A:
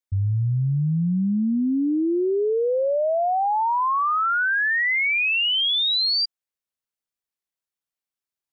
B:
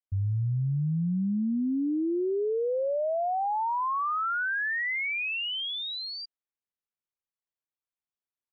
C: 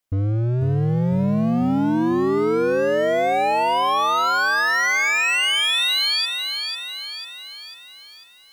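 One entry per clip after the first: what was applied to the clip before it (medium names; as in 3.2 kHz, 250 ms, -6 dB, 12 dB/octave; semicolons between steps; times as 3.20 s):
distance through air 280 m; trim -5.5 dB
in parallel at 0 dB: gain riding 0.5 s; on the sum: hard clipper -26.5 dBFS, distortion -10 dB; bit-crushed delay 496 ms, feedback 55%, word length 10-bit, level -6 dB; trim +7 dB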